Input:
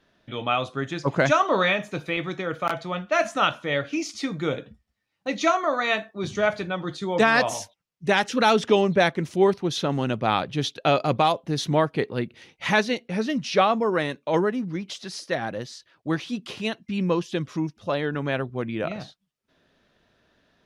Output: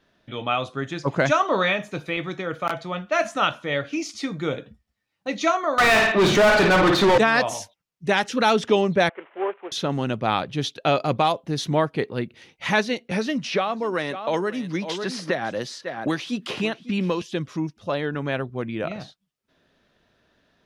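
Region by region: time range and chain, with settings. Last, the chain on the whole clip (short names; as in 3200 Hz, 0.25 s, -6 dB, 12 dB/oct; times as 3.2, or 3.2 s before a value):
5.78–7.18 high shelf 5500 Hz -7 dB + flutter echo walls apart 9.4 m, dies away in 0.38 s + overdrive pedal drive 36 dB, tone 2200 Hz, clips at -8.5 dBFS
9.09–9.72 CVSD 16 kbps + HPF 460 Hz 24 dB/oct + air absorption 380 m
13.11–17.22 low shelf 200 Hz -6.5 dB + echo 0.548 s -18 dB + three-band squash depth 100%
whole clip: dry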